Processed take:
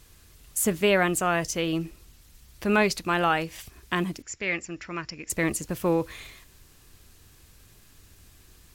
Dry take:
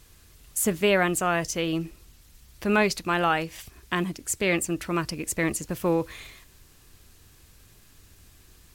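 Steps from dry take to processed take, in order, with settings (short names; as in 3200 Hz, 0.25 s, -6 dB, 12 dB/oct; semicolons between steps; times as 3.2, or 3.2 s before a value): 4.22–5.3 rippled Chebyshev low-pass 7300 Hz, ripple 9 dB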